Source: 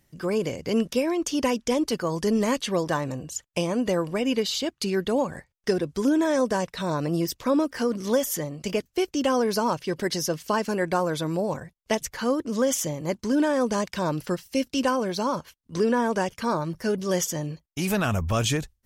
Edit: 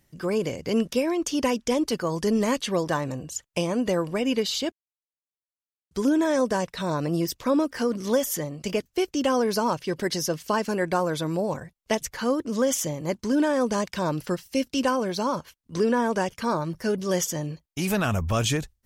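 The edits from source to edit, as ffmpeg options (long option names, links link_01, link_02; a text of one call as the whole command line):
ffmpeg -i in.wav -filter_complex "[0:a]asplit=3[link_01][link_02][link_03];[link_01]atrim=end=4.72,asetpts=PTS-STARTPTS,afade=type=out:start_time=4.716:duration=0.004:curve=hsin[link_04];[link_02]atrim=start=4.72:end=5.91,asetpts=PTS-STARTPTS,volume=0[link_05];[link_03]atrim=start=5.91,asetpts=PTS-STARTPTS,afade=type=in:duration=0.004:curve=hsin[link_06];[link_04][link_05][link_06]concat=n=3:v=0:a=1" out.wav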